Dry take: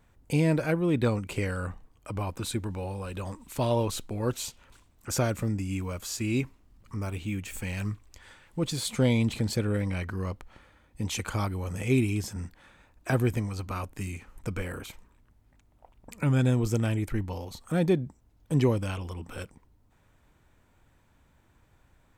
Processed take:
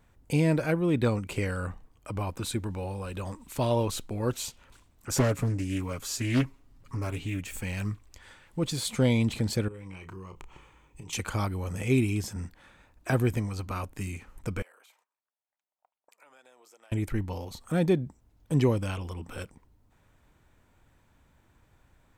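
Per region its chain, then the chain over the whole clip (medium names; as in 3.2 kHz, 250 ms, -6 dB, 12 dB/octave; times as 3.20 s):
5.11–7.43 s: comb 7.3 ms + loudspeaker Doppler distortion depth 0.67 ms
9.68–11.13 s: rippled EQ curve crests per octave 0.71, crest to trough 10 dB + compression 16:1, threshold -39 dBFS + doubling 31 ms -9.5 dB
14.62–16.92 s: gate -51 dBFS, range -18 dB + ladder high-pass 520 Hz, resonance 25% + compression 3:1, threshold -59 dBFS
whole clip: none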